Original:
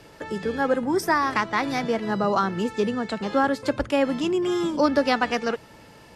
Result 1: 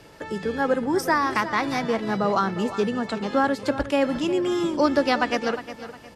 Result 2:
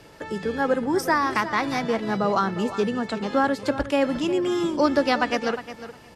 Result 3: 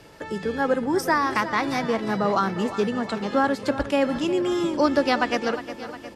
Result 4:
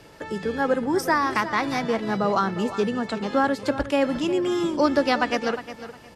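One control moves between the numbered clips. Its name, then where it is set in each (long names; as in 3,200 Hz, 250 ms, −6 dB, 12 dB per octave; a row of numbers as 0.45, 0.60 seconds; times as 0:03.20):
repeating echo, feedback: 33, 15, 60, 23%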